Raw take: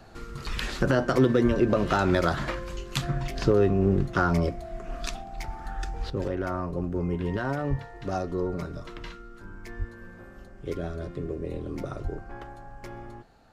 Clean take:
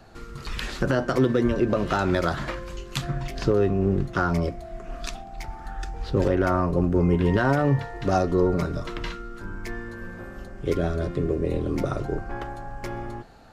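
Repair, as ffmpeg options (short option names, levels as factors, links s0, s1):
-filter_complex "[0:a]asplit=3[s0][s1][s2];[s0]afade=t=out:st=7.69:d=0.02[s3];[s1]highpass=f=140:w=0.5412,highpass=f=140:w=1.3066,afade=t=in:st=7.69:d=0.02,afade=t=out:st=7.81:d=0.02[s4];[s2]afade=t=in:st=7.81:d=0.02[s5];[s3][s4][s5]amix=inputs=3:normalize=0,asplit=3[s6][s7][s8];[s6]afade=t=out:st=9.78:d=0.02[s9];[s7]highpass=f=140:w=0.5412,highpass=f=140:w=1.3066,afade=t=in:st=9.78:d=0.02,afade=t=out:st=9.9:d=0.02[s10];[s8]afade=t=in:st=9.9:d=0.02[s11];[s9][s10][s11]amix=inputs=3:normalize=0,asplit=3[s12][s13][s14];[s12]afade=t=out:st=12.03:d=0.02[s15];[s13]highpass=f=140:w=0.5412,highpass=f=140:w=1.3066,afade=t=in:st=12.03:d=0.02,afade=t=out:st=12.15:d=0.02[s16];[s14]afade=t=in:st=12.15:d=0.02[s17];[s15][s16][s17]amix=inputs=3:normalize=0,asetnsamples=n=441:p=0,asendcmd='6.1 volume volume 8dB',volume=1"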